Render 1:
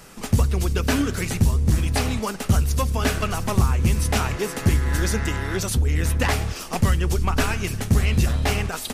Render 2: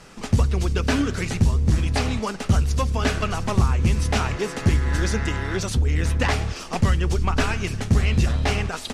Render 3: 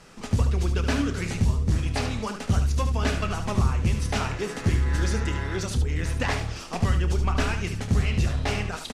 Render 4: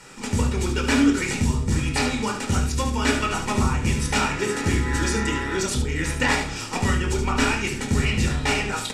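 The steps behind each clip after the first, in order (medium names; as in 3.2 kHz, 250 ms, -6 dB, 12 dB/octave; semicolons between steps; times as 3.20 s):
low-pass 6.8 kHz 12 dB/octave
early reflections 29 ms -12.5 dB, 74 ms -8.5 dB; trim -4.5 dB
reverberation RT60 0.35 s, pre-delay 15 ms, DRR 5 dB; trim +6 dB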